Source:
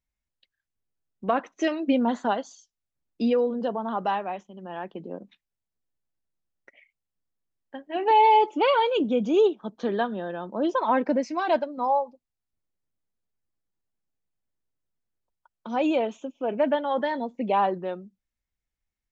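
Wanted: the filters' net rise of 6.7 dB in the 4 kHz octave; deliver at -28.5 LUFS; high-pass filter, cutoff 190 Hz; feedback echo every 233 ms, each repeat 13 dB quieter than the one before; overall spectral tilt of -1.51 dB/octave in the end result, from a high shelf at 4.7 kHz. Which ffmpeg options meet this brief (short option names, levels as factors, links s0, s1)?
-af "highpass=190,equalizer=f=4000:t=o:g=6,highshelf=f=4700:g=8.5,aecho=1:1:233|466|699:0.224|0.0493|0.0108,volume=0.631"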